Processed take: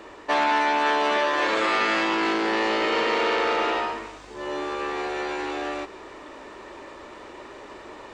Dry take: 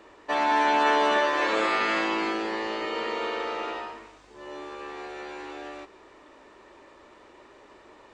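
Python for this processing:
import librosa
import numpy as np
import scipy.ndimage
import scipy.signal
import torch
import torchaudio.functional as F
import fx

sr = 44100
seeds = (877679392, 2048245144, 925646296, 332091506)

y = fx.rider(x, sr, range_db=5, speed_s=0.5)
y = fx.transformer_sat(y, sr, knee_hz=1700.0)
y = y * librosa.db_to_amplitude(5.5)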